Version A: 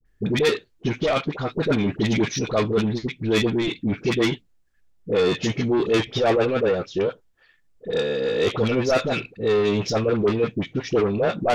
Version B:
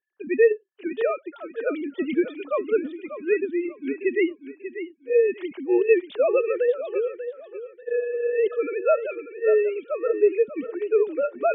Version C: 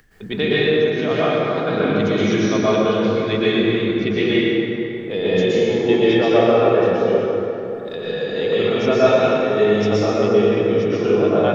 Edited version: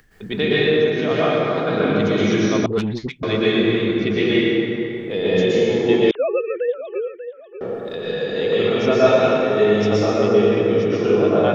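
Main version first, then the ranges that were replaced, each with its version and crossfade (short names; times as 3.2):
C
2.66–3.23 from A
6.11–7.61 from B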